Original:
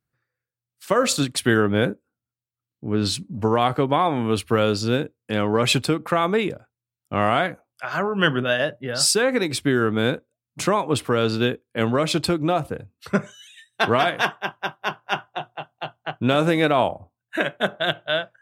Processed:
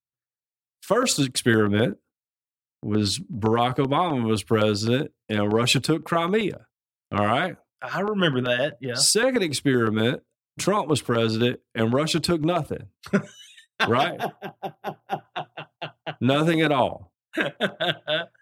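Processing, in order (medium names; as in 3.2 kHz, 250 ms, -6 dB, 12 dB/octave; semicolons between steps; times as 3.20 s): time-frequency box 14.08–15.25 s, 880–10000 Hz -12 dB; gate -48 dBFS, range -22 dB; LFO notch saw down 7.8 Hz 430–2800 Hz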